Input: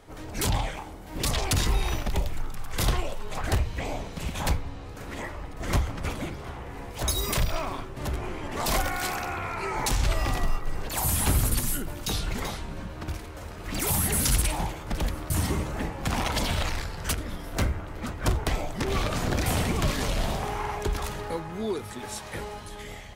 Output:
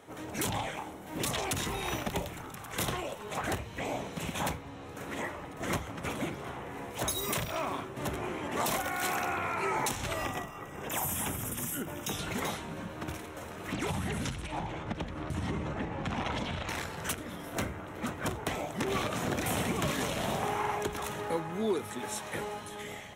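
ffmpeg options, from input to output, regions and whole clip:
-filter_complex "[0:a]asettb=1/sr,asplit=3[a][b][c];[a]atrim=end=10.254[d];[b]atrim=start=10.25:end=12.19,asetpts=PTS-STARTPTS,afade=t=in:d=0.004:c=qsin,afade=t=out:st=1.936:d=0.004:c=qsin,equalizer=f=10k:t=o:w=0.29:g=-4,acompressor=threshold=-27dB:ratio=5:attack=3.2:release=140:knee=1:detection=peak,asuperstop=centerf=4300:order=4:qfactor=3.5[e];[c]atrim=start=12.186[f];[d][e]acrossfade=d=0.004:c1=hsin:c2=qsin[g];[g][f]acrossfade=d=0.004:c1=qsin:c2=hsin,asettb=1/sr,asplit=3[h][i][j];[h]atrim=end=13.734[k];[i]atrim=start=13.73:end=16.69,asetpts=PTS-STARTPTS,afade=t=in:d=0.004:c=qsin,afade=t=out:st=2.956:d=0.004:c=qsin,lowpass=4.4k,lowshelf=f=110:g=11,acompressor=threshold=-24dB:ratio=5:attack=3.2:release=140:knee=1:detection=peak[l];[j]atrim=start=16.686[m];[k][l]acrossfade=d=0.004:c1=hsin:c2=qsin[n];[n][m]acrossfade=d=0.004:c1=qsin:c2=hsin,highpass=140,equalizer=f=4.7k:w=5.7:g=-12,alimiter=limit=-20dB:level=0:latency=1:release=449"

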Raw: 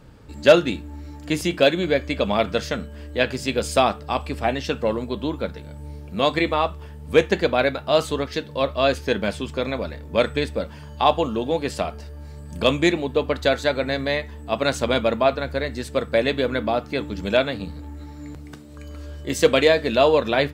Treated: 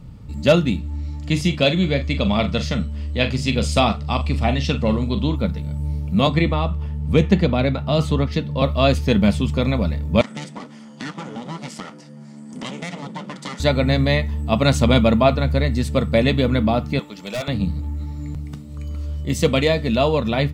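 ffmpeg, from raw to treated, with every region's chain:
-filter_complex "[0:a]asettb=1/sr,asplit=3[a][b][c];[a]atrim=end=0.794[d];[b]atrim=start=0.79:end=5.36,asetpts=PTS-STARTPTS,afade=t=in:d=0.004:c=qsin,afade=t=out:st=4.566:d=0.004:c=qsin,lowpass=4.3k,aemphasis=mode=production:type=75fm,asplit=2[e][f];[f]adelay=42,volume=-10.5dB[g];[e][g]amix=inputs=2:normalize=0,atrim=end_sample=201537[h];[c]atrim=start=5.356[i];[d][h]acrossfade=d=0.004:c1=hsin:c2=qsin[j];[j][i]acrossfade=d=0.004:c1=qsin:c2=hsin,asettb=1/sr,asplit=3[k][l][m];[k]atrim=end=6.274[n];[l]atrim=start=6.27:end=8.62,asetpts=PTS-STARTPTS,afade=t=in:d=0.004:c=qsin,afade=t=out:st=2.346:d=0.004:c=qsin,lowpass=f=3.7k:p=1,acrossover=split=450|3000[o][p][q];[p]acompressor=threshold=-22dB:ratio=6:attack=3.2:release=140:knee=2.83:detection=peak[r];[o][r][q]amix=inputs=3:normalize=0[s];[m]atrim=start=8.616[t];[n][s]acrossfade=d=0.004:c1=hsin:c2=qsin[u];[u][t]acrossfade=d=0.004:c1=qsin:c2=hsin,asettb=1/sr,asplit=3[v][w][x];[v]atrim=end=10.214[y];[w]atrim=start=10.21:end=13.6,asetpts=PTS-STARTPTS,afade=t=in:d=0.004:c=qsin,afade=t=out:st=3.386:d=0.004:c=qsin,aeval=exprs='abs(val(0))':c=same,highpass=f=220:w=0.5412,highpass=f=220:w=1.3066,equalizer=f=370:t=q:w=4:g=-6,equalizer=f=720:t=q:w=4:g=-8,equalizer=f=1.1k:t=q:w=4:g=-6,equalizer=f=2.6k:t=q:w=4:g=-7,equalizer=f=4k:t=q:w=4:g=-8,lowpass=f=8.8k:w=0.5412,lowpass=f=8.8k:w=1.3066,acompressor=threshold=-32dB:ratio=3:attack=3.2:release=140:knee=1:detection=peak[z];[x]atrim=start=13.596[aa];[y][z]acrossfade=d=0.004:c1=hsin:c2=qsin[ab];[ab][aa]acrossfade=d=0.004:c1=qsin:c2=hsin,asettb=1/sr,asplit=3[ac][ad][ae];[ac]atrim=end=16.994[af];[ad]atrim=start=16.99:end=17.48,asetpts=PTS-STARTPTS,afade=t=in:d=0.004:c=qsin,afade=t=out:st=0.486:d=0.004:c=qsin,highpass=550,volume=23.5dB,asoftclip=hard,volume=-23.5dB[ag];[ae]atrim=start=17.476[ah];[af][ag]acrossfade=d=0.004:c1=hsin:c2=qsin[ai];[ai][ah]acrossfade=d=0.004:c1=qsin:c2=hsin,lowshelf=f=260:t=q:w=1.5:g=9.5,bandreject=f=1.6k:w=5.2,dynaudnorm=f=610:g=11:m=11.5dB,volume=-1dB"

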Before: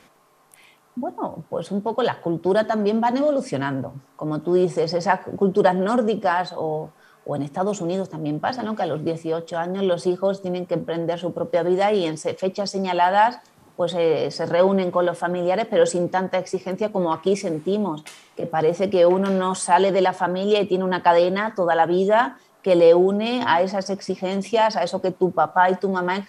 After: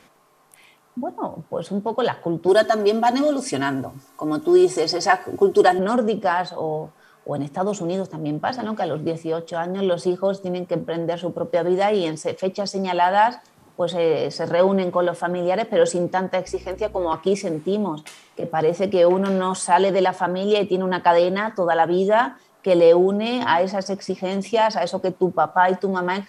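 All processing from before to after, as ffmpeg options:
-filter_complex "[0:a]asettb=1/sr,asplit=3[a][b][c];[a]atrim=end=2.484[d];[b]atrim=start=2.48:end=5.79,asetpts=PTS-STARTPTS,afade=t=in:d=0.004:c=qsin,afade=t=out:st=3.306:d=0.004:c=qsin,highshelf=f=4k:g=10.5,aecho=1:1:2.8:0.72,atrim=end_sample=145971[e];[c]atrim=start=5.786[f];[d][e]acrossfade=d=0.004:c1=hsin:c2=qsin[g];[g][f]acrossfade=d=0.004:c1=qsin:c2=hsin,asettb=1/sr,asplit=3[h][i][j];[h]atrim=end=16.474[k];[i]atrim=start=16.47:end=17.13,asetpts=PTS-STARTPTS,afade=t=in:d=0.004:c=qsin,afade=t=out:st=0.656:d=0.004:c=qsin,highpass=f=310:w=0.5412,highpass=f=310:w=1.3066,aeval=exprs='val(0)+0.00891*(sin(2*PI*60*n/s)+sin(2*PI*2*60*n/s)/2+sin(2*PI*3*60*n/s)/3+sin(2*PI*4*60*n/s)/4+sin(2*PI*5*60*n/s)/5)':c=same[l];[j]atrim=start=17.126[m];[k][l]acrossfade=d=0.004:c1=hsin:c2=qsin[n];[n][m]acrossfade=d=0.004:c1=qsin:c2=hsin"

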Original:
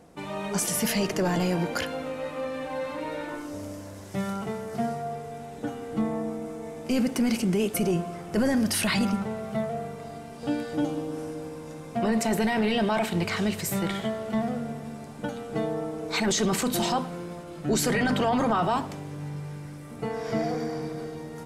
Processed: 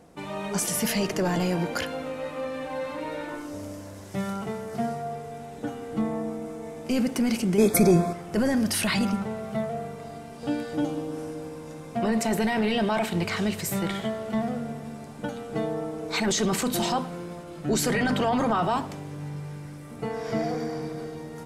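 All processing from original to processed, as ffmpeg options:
-filter_complex "[0:a]asettb=1/sr,asplit=3[a][b][c];[a]atrim=end=7.584[d];[b]atrim=start=7.58:end=8.13,asetpts=PTS-STARTPTS,afade=t=in:d=0.004:c=qsin,afade=t=out:st=0.546:d=0.004:c=qsin,acontrast=82,asuperstop=centerf=2900:order=20:qfactor=4.3[e];[c]atrim=start=8.126[f];[d][e]acrossfade=d=0.004:c1=hsin:c2=qsin[g];[g][f]acrossfade=d=0.004:c1=qsin:c2=hsin"

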